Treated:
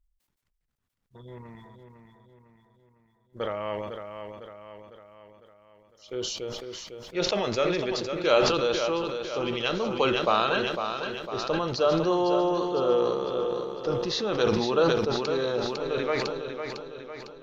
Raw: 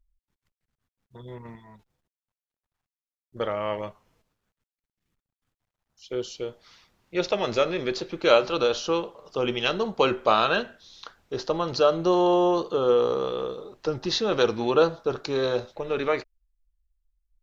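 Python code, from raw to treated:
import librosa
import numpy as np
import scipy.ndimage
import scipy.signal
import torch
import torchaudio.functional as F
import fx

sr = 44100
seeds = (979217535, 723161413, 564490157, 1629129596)

p1 = x + fx.echo_feedback(x, sr, ms=503, feedback_pct=51, wet_db=-7.5, dry=0)
p2 = fx.sustainer(p1, sr, db_per_s=33.0)
y = p2 * librosa.db_to_amplitude(-4.0)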